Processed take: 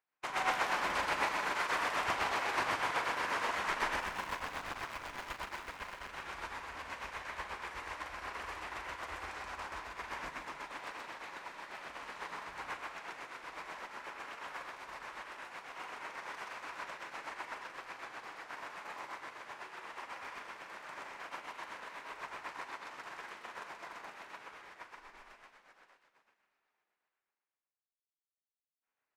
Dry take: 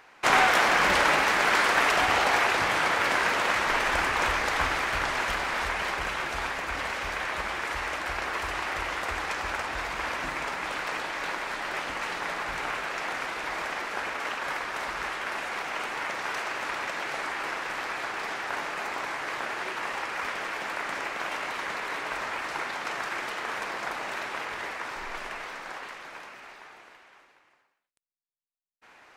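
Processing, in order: 4–6.09 cycle switcher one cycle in 2, muted; dynamic EQ 1000 Hz, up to +6 dB, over -43 dBFS, Q 5.1; limiter -18 dBFS, peak gain reduction 11 dB; tremolo 8.1 Hz, depth 34%; doubler 41 ms -9.5 dB; loudspeakers at several distances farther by 44 m -1 dB, 96 m -10 dB; upward expander 2.5:1, over -44 dBFS; gain -5 dB

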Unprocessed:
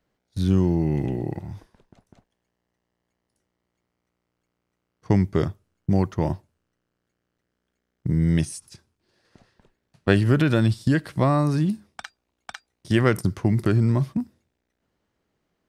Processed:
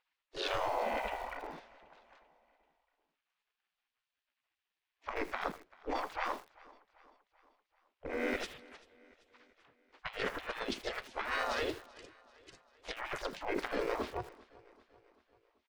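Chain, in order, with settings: harmoniser -5 st -4 dB, +3 st -5 dB, +7 st -16 dB; in parallel at -7.5 dB: soft clip -12 dBFS, distortion -14 dB; on the sum: spectral gate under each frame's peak -20 dB weak; negative-ratio compressor -35 dBFS, ratio -0.5; low-pass opened by the level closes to 2400 Hz, open at -18 dBFS; on a send: feedback echo 0.389 s, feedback 55%, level -22.5 dB; on the sum: lo-fi delay 80 ms, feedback 35%, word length 7-bit, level -14 dB

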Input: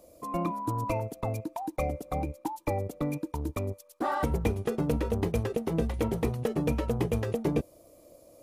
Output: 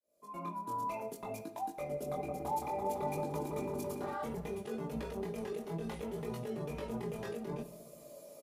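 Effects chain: opening faded in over 1.99 s; HPF 140 Hz 6 dB/oct; low shelf 180 Hz -6.5 dB; comb 4.9 ms, depth 69%; negative-ratio compressor -34 dBFS, ratio -1; limiter -31 dBFS, peak gain reduction 10 dB; chorus 0.62 Hz, delay 18 ms, depth 6.4 ms; 1.85–4.14 repeats that get brighter 0.168 s, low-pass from 750 Hz, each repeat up 1 oct, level 0 dB; shoebox room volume 250 m³, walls mixed, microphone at 0.34 m; gain +2 dB

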